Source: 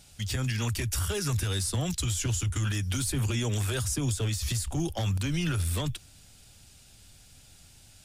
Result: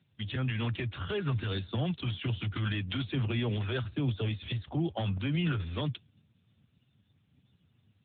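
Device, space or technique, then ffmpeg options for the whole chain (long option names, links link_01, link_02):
mobile call with aggressive noise cancelling: -filter_complex "[0:a]asettb=1/sr,asplit=3[link_01][link_02][link_03];[link_01]atrim=end=2.374[link_04];[link_02]atrim=start=2.37:end=3.24,asetpts=PTS-STARTPTS,afade=type=in:duration=0.004:curve=qsin,afade=type=out:start_time=0.866:duration=0.004:curve=qsin,highshelf=frequency=3100:gain=5.5[link_05];[link_03]atrim=start=3.236[link_06];[link_04][link_05]acrossfade=duration=0.004:curve1=hsin:curve2=qsin[link_07];[link_07][link_06]acrossfade=duration=0.004:curve1=qsin:curve2=hsin,highpass=100,afftdn=noise_reduction=18:noise_floor=-52" -ar 8000 -c:a libopencore_amrnb -b:a 10200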